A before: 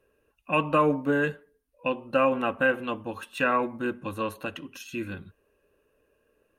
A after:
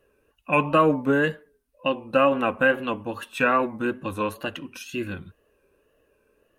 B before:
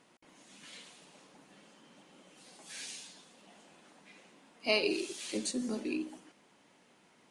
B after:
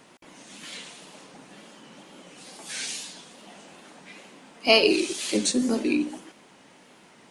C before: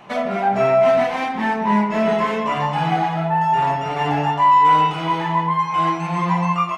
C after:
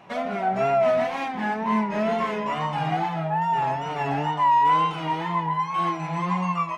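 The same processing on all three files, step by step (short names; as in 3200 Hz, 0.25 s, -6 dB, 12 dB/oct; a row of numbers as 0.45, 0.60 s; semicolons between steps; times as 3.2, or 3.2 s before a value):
wow and flutter 79 cents; match loudness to -24 LUFS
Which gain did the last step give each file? +3.5, +11.5, -6.0 dB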